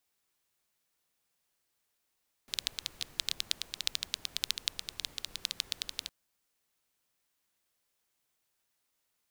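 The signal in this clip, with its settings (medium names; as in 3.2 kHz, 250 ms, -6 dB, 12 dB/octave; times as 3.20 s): rain from filtered ticks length 3.61 s, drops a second 11, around 3.8 kHz, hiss -17 dB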